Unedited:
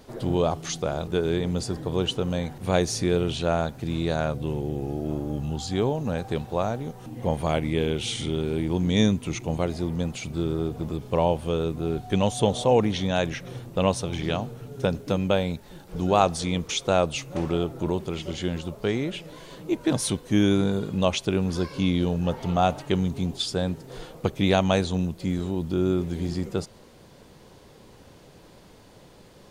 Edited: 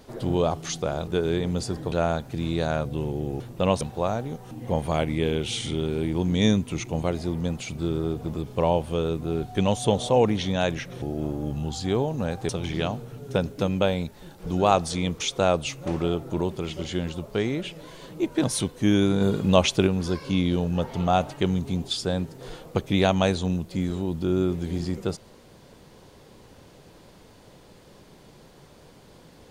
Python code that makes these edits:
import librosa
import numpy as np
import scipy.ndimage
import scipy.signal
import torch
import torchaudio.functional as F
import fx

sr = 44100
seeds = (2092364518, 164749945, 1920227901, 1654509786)

y = fx.edit(x, sr, fx.cut(start_s=1.92, length_s=1.49),
    fx.swap(start_s=4.89, length_s=1.47, other_s=13.57, other_length_s=0.41),
    fx.clip_gain(start_s=20.7, length_s=0.66, db=4.5), tone=tone)